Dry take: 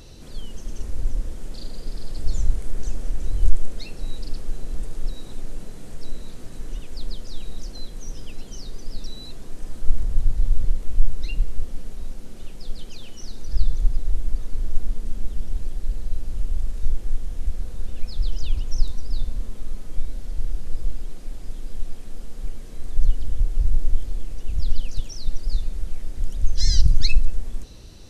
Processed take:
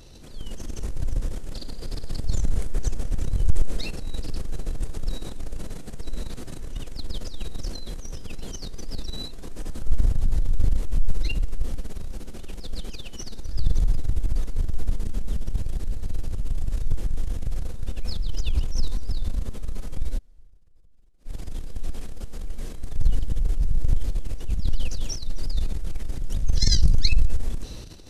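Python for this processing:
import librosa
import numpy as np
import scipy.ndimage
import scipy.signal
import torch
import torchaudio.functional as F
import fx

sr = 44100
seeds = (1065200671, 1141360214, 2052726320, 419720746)

y = fx.gate_flip(x, sr, shuts_db=-22.0, range_db=-32, at=(20.17, 21.25), fade=0.02)
y = fx.transient(y, sr, attack_db=-2, sustain_db=11)
y = y * 10.0 ** (-4.5 / 20.0)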